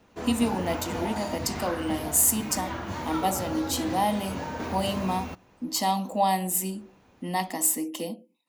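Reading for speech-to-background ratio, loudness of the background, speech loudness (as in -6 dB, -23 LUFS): 7.5 dB, -34.5 LUFS, -27.0 LUFS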